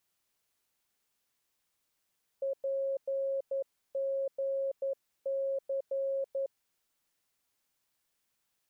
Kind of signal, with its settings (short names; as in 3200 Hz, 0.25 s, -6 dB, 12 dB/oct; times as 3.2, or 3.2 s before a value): Morse "PGC" 11 wpm 544 Hz -29.5 dBFS